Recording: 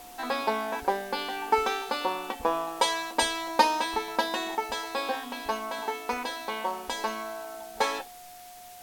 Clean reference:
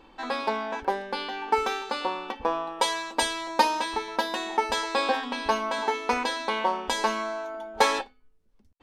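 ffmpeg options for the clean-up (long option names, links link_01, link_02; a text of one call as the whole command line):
ffmpeg -i in.wav -af "bandreject=frequency=720:width=30,afwtdn=0.0032,asetnsamples=nb_out_samples=441:pad=0,asendcmd='4.55 volume volume 5.5dB',volume=0dB" out.wav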